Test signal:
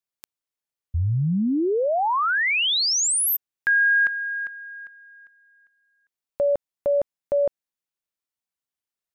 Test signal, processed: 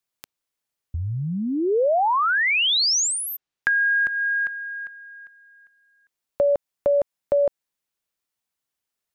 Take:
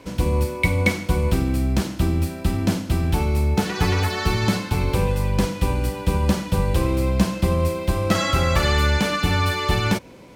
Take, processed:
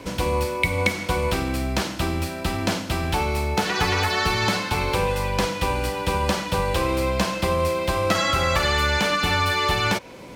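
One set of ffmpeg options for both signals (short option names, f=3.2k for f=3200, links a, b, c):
-filter_complex "[0:a]acrossover=split=470|6300[a][b][c];[a]acompressor=threshold=-41dB:ratio=2[d];[b]acompressor=threshold=-25dB:ratio=8[e];[c]acompressor=threshold=-51dB:ratio=2[f];[d][e][f]amix=inputs=3:normalize=0,volume=6dB"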